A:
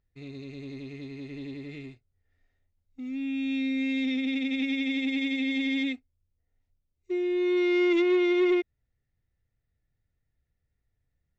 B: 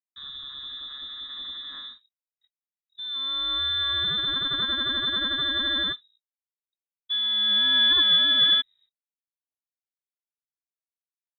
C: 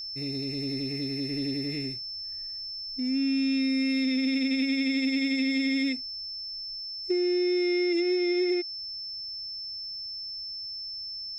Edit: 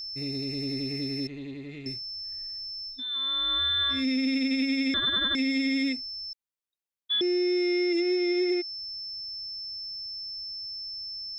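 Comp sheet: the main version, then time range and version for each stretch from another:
C
1.27–1.86 from A
2.95–3.97 from B, crossfade 0.16 s
4.94–5.35 from B
6.33–7.21 from B

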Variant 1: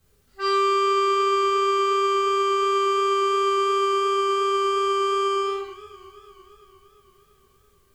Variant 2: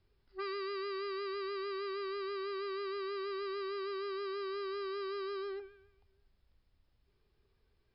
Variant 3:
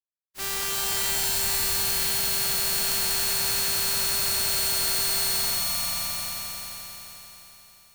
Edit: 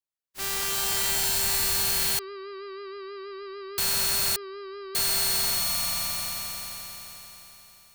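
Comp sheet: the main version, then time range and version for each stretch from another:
3
2.19–3.78 from 2
4.36–4.95 from 2
not used: 1

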